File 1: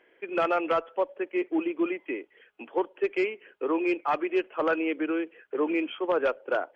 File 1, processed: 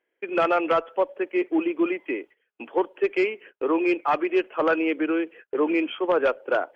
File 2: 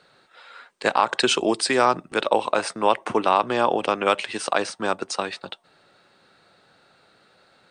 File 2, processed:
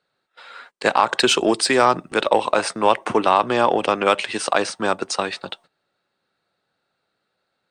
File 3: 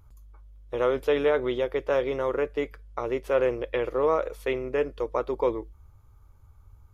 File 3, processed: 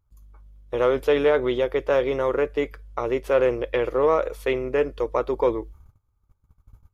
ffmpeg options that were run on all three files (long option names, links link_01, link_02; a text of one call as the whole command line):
ffmpeg -i in.wav -filter_complex "[0:a]agate=range=-21dB:threshold=-49dB:ratio=16:detection=peak,asplit=2[link_01][link_02];[link_02]asoftclip=type=tanh:threshold=-18.5dB,volume=-8dB[link_03];[link_01][link_03]amix=inputs=2:normalize=0,volume=1.5dB" out.wav